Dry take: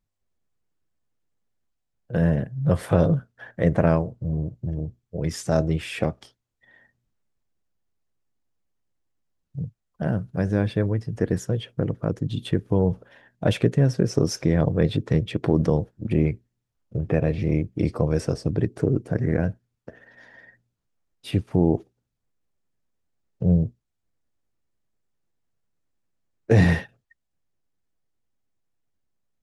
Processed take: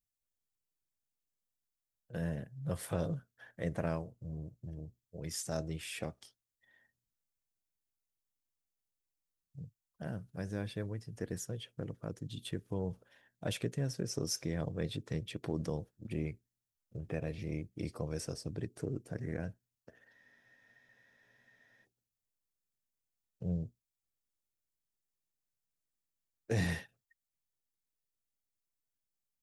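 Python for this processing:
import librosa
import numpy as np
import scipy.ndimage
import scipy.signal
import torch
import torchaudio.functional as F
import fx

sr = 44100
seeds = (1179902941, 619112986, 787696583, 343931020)

y = scipy.signal.lfilter([1.0, -0.8], [1.0], x)
y = fx.spec_freeze(y, sr, seeds[0], at_s=20.15, hold_s=1.68)
y = F.gain(torch.from_numpy(y), -2.5).numpy()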